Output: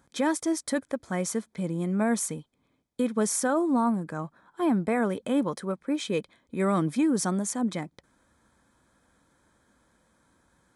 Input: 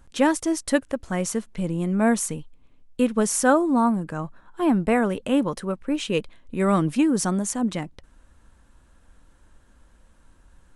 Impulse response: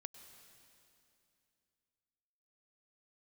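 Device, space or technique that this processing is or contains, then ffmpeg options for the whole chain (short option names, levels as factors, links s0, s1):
PA system with an anti-feedback notch: -af "highpass=130,asuperstop=centerf=2800:order=8:qfactor=6.6,alimiter=limit=0.2:level=0:latency=1:release=24,volume=0.708"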